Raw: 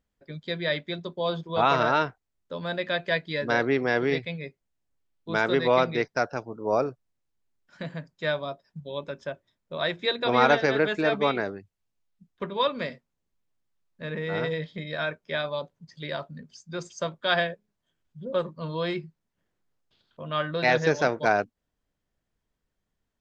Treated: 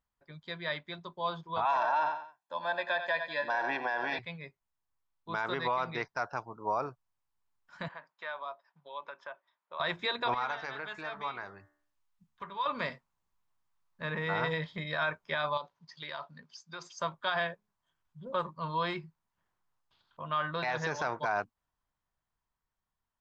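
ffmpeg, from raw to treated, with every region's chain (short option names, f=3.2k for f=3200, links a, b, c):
-filter_complex "[0:a]asettb=1/sr,asplit=3[a][b][c];[a]atrim=end=1.654[d];[b]atrim=start=1.65:end=4.19,asetpts=PTS-STARTPTS,afade=t=in:d=0.004:c=qsin,afade=t=out:st=2.536:d=0.004:c=qsin,highpass=f=410:t=q:w=2.6,aecho=1:1:1.2:0.97,atrim=end_sample=112014,aecho=1:1:91|182|273:0.237|0.0806|0.0274,atrim=end_sample=112014[e];[c]atrim=start=4.186[f];[d][e]acrossfade=d=0.004:c1=hsin:c2=qsin[g];[g][f]acrossfade=d=0.004:c1=qsin:c2=hsin,asettb=1/sr,asplit=3[h][i][j];[h]atrim=end=7.884[k];[i]atrim=start=7.88:end=9.8,asetpts=PTS-STARTPTS,afade=t=in:d=0.004:c=qsin,afade=t=out:st=1.916:d=0.004:c=qsin,highpass=580,lowpass=3.1k,acompressor=threshold=-43dB:ratio=2:attack=3.2:release=140:knee=1:detection=peak[l];[j]atrim=start=9.796[m];[k][l]acrossfade=d=0.004:c1=hsin:c2=qsin[n];[n][m]acrossfade=d=0.004:c1=qsin:c2=hsin,asettb=1/sr,asplit=3[o][p][q];[o]atrim=end=10.344[r];[p]atrim=start=10.34:end=12.66,asetpts=PTS-STARTPTS,afade=t=in:d=0.004:c=qsin,afade=t=out:st=2.316:d=0.004:c=qsin,equalizer=f=290:t=o:w=2.8:g=-6,acompressor=threshold=-45dB:ratio=2:attack=3.2:release=140:knee=1:detection=peak,bandreject=f=73.67:t=h:w=4,bandreject=f=147.34:t=h:w=4,bandreject=f=221.01:t=h:w=4,bandreject=f=294.68:t=h:w=4,bandreject=f=368.35:t=h:w=4,bandreject=f=442.02:t=h:w=4,bandreject=f=515.69:t=h:w=4,bandreject=f=589.36:t=h:w=4,bandreject=f=663.03:t=h:w=4,bandreject=f=736.7:t=h:w=4,bandreject=f=810.37:t=h:w=4,bandreject=f=884.04:t=h:w=4,bandreject=f=957.71:t=h:w=4,bandreject=f=1.03138k:t=h:w=4,bandreject=f=1.10505k:t=h:w=4,bandreject=f=1.17872k:t=h:w=4,bandreject=f=1.25239k:t=h:w=4,bandreject=f=1.32606k:t=h:w=4,bandreject=f=1.39973k:t=h:w=4,bandreject=f=1.4734k:t=h:w=4,bandreject=f=1.54707k:t=h:w=4,bandreject=f=1.62074k:t=h:w=4,bandreject=f=1.69441k:t=h:w=4,bandreject=f=1.76808k:t=h:w=4,bandreject=f=1.84175k:t=h:w=4,bandreject=f=1.91542k:t=h:w=4,bandreject=f=1.98909k:t=h:w=4,bandreject=f=2.06276k:t=h:w=4,bandreject=f=2.13643k:t=h:w=4[s];[q]atrim=start=12.656[t];[r][s]acrossfade=d=0.004:c1=hsin:c2=qsin[u];[u][t]acrossfade=d=0.004:c1=qsin:c2=hsin,asettb=1/sr,asplit=3[v][w][x];[v]atrim=end=15.574[y];[w]atrim=start=15.57:end=16.99,asetpts=PTS-STARTPTS,afade=t=in:d=0.004:c=qsin,afade=t=out:st=1.416:d=0.004:c=qsin,lowpass=f=5.2k:w=0.5412,lowpass=f=5.2k:w=1.3066,aemphasis=mode=production:type=bsi,acompressor=threshold=-35dB:ratio=5:attack=3.2:release=140:knee=1:detection=peak[z];[x]atrim=start=16.986[aa];[y][z]acrossfade=d=0.004:c1=hsin:c2=qsin[ab];[ab][aa]acrossfade=d=0.004:c1=qsin:c2=hsin,equalizer=f=250:t=o:w=1:g=-5,equalizer=f=500:t=o:w=1:g=-6,equalizer=f=1k:t=o:w=1:g=12,dynaudnorm=f=180:g=17:m=8dB,alimiter=limit=-12.5dB:level=0:latency=1:release=47,volume=-8.5dB"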